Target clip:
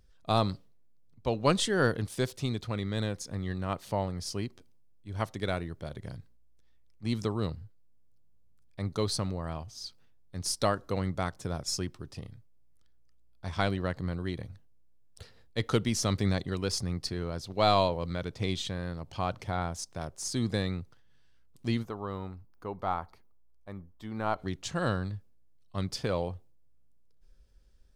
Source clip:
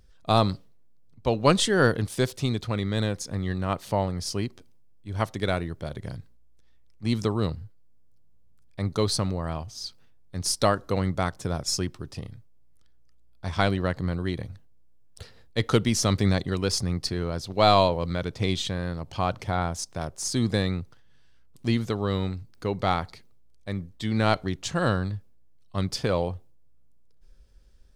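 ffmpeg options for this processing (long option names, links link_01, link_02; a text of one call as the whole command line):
ffmpeg -i in.wav -filter_complex "[0:a]asplit=3[link_01][link_02][link_03];[link_01]afade=type=out:start_time=21.82:duration=0.02[link_04];[link_02]equalizer=frequency=125:width_type=o:width=1:gain=-10,equalizer=frequency=250:width_type=o:width=1:gain=-3,equalizer=frequency=500:width_type=o:width=1:gain=-4,equalizer=frequency=1000:width_type=o:width=1:gain=5,equalizer=frequency=2000:width_type=o:width=1:gain=-7,equalizer=frequency=4000:width_type=o:width=1:gain=-11,equalizer=frequency=8000:width_type=o:width=1:gain=-11,afade=type=in:start_time=21.82:duration=0.02,afade=type=out:start_time=24.38:duration=0.02[link_05];[link_03]afade=type=in:start_time=24.38:duration=0.02[link_06];[link_04][link_05][link_06]amix=inputs=3:normalize=0,volume=-5.5dB" out.wav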